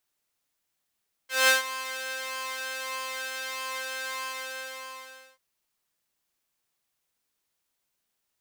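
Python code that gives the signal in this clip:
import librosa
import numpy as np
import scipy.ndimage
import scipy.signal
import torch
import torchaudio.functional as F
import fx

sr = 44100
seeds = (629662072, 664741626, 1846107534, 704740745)

y = fx.sub_patch_pwm(sr, seeds[0], note=72, wave2='saw', interval_st=0, detune_cents=4, level2_db=-9.0, sub_db=-6.0, noise_db=-19.0, kind='highpass', cutoff_hz=990.0, q=1.0, env_oct=1.0, env_decay_s=0.07, env_sustain_pct=40, attack_ms=192.0, decay_s=0.14, sustain_db=-16, release_s=1.2, note_s=2.89, lfo_hz=1.6, width_pct=41, width_swing_pct=14)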